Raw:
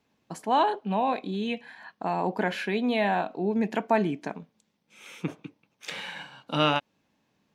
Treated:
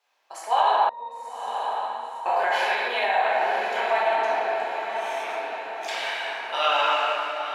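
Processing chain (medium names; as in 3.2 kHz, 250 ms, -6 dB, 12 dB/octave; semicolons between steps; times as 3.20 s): simulated room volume 170 m³, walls hard, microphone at 1.2 m; peak limiter -9.5 dBFS, peak gain reduction 6.5 dB; high-pass 630 Hz 24 dB/octave; 0.89–2.26 s: pitch-class resonator A#, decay 0.21 s; echo that smears into a reverb 1030 ms, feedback 54%, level -7 dB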